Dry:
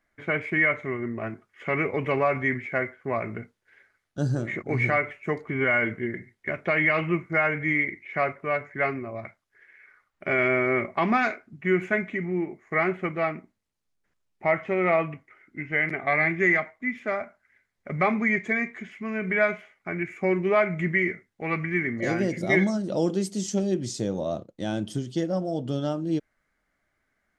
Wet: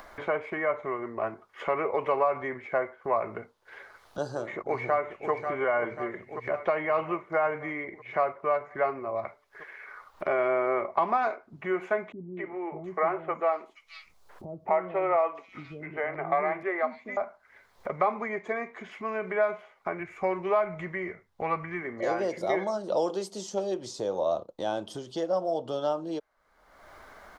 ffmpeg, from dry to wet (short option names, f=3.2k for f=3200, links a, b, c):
-filter_complex "[0:a]asplit=2[a][b];[b]afade=t=in:st=4.28:d=0.01,afade=t=out:st=5.31:d=0.01,aecho=0:1:540|1080|1620|2160|2700|3240|3780|4320:0.266073|0.172947|0.112416|0.0730702|0.0474956|0.0308721|0.0200669|0.0130435[c];[a][c]amix=inputs=2:normalize=0,asettb=1/sr,asplit=3[d][e][f];[d]atrim=end=12.124[g];[e]atrim=start=12.12:end=17.17,asetpts=PTS-STARTPTS,afade=t=in:d=0.004:c=qsin,afade=t=out:st=5.046:d=0.004:c=qsin,acrossover=split=310|3800[h][i][j];[i]adelay=250[k];[j]adelay=720[l];[h][k][l]amix=inputs=3:normalize=0,atrim=end_sample=222705[m];[f]atrim=start=17.166[n];[g][m]acrossfade=d=0.004:c1=hsin:c2=qsin[o];[o][n]acrossfade=d=0.004:c1=qsin:c2=hsin,asplit=3[p][q][r];[p]afade=t=out:st=19.99:d=0.02[s];[q]asubboost=boost=3.5:cutoff=150,afade=t=in:st=19.99:d=0.02,afade=t=out:st=21.81:d=0.02[t];[r]afade=t=in:st=21.81:d=0.02[u];[s][t][u]amix=inputs=3:normalize=0,acompressor=mode=upward:threshold=-29dB:ratio=2.5,equalizer=f=125:t=o:w=1:g=-6,equalizer=f=250:t=o:w=1:g=-5,equalizer=f=500:t=o:w=1:g=5,equalizer=f=1k:t=o:w=1:g=11,equalizer=f=2k:t=o:w=1:g=-7,equalizer=f=4k:t=o:w=1:g=4,equalizer=f=8k:t=o:w=1:g=-4,acrossover=split=370|1400[v][w][x];[v]acompressor=threshold=-40dB:ratio=4[y];[w]acompressor=threshold=-21dB:ratio=4[z];[x]acompressor=threshold=-38dB:ratio=4[aa];[y][z][aa]amix=inputs=3:normalize=0,volume=-2dB"